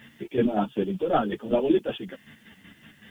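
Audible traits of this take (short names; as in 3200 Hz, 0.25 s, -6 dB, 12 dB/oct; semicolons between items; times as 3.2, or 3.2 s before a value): chopped level 5.3 Hz, depth 60%, duty 40%; a quantiser's noise floor 12-bit, dither triangular; a shimmering, thickened sound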